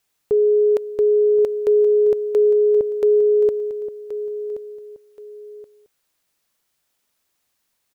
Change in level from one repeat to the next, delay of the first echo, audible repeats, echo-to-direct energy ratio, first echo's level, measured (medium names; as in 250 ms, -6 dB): -10.0 dB, 1076 ms, 2, -12.0 dB, -12.5 dB